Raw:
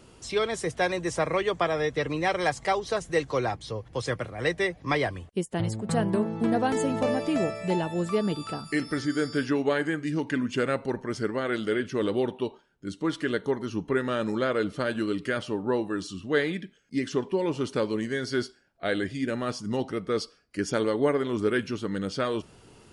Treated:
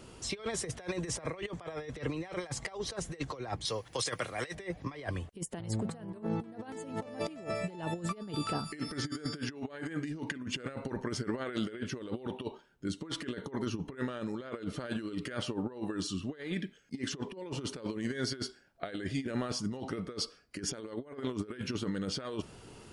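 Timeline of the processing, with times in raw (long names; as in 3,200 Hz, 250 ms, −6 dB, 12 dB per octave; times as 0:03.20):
0:03.65–0:04.55: spectral tilt +3 dB per octave
whole clip: compressor whose output falls as the input rises −32 dBFS, ratio −0.5; level −4 dB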